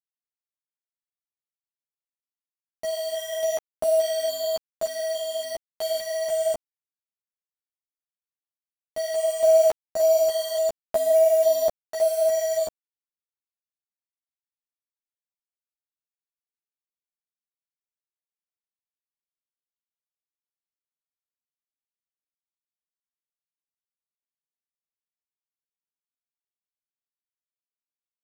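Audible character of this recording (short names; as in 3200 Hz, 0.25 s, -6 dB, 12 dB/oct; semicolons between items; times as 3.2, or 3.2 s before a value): random-step tremolo, depth 75%; a quantiser's noise floor 6-bit, dither none; a shimmering, thickened sound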